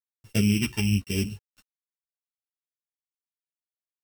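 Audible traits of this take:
a buzz of ramps at a fixed pitch in blocks of 16 samples
phaser sweep stages 2, 1 Hz, lowest notch 490–1,000 Hz
a quantiser's noise floor 10 bits, dither none
a shimmering, thickened sound

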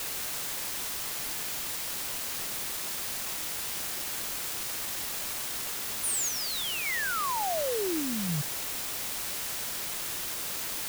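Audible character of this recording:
sample-and-hold tremolo
a quantiser's noise floor 6 bits, dither triangular

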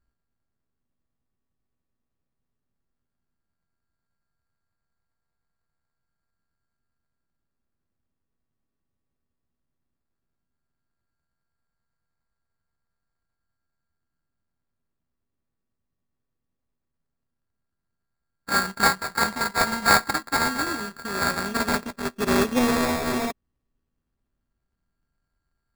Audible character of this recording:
a buzz of ramps at a fixed pitch in blocks of 32 samples
phaser sweep stages 4, 0.14 Hz, lowest notch 480–1,300 Hz
aliases and images of a low sample rate 3,000 Hz, jitter 0%

